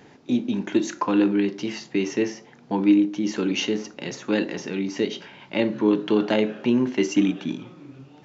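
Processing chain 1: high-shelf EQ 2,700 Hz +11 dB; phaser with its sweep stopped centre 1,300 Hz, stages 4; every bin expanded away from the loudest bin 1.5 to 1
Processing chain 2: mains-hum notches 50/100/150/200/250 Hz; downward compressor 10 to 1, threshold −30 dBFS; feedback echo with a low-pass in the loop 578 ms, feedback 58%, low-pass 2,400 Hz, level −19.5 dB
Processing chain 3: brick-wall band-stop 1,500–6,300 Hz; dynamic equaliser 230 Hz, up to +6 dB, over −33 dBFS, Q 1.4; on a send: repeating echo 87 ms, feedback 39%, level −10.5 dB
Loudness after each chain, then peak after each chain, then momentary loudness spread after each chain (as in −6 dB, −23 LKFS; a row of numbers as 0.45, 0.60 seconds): −31.0, −35.5, −20.5 LKFS; −12.0, −19.0, −4.5 dBFS; 15, 5, 11 LU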